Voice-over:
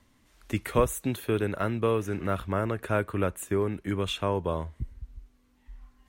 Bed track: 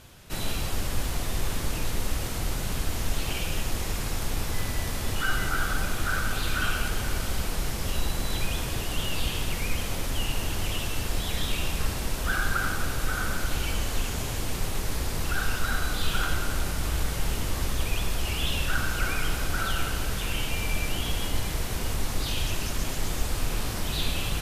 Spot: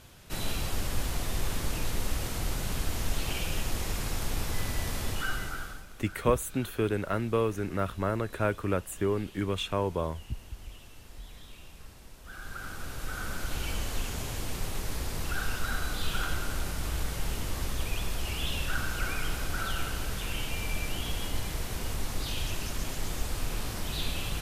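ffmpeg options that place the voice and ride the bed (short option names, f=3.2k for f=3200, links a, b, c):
-filter_complex "[0:a]adelay=5500,volume=-1.5dB[a];[1:a]volume=14dB,afade=t=out:st=5:d=0.85:silence=0.11885,afade=t=in:st=12.23:d=1.47:silence=0.149624[b];[a][b]amix=inputs=2:normalize=0"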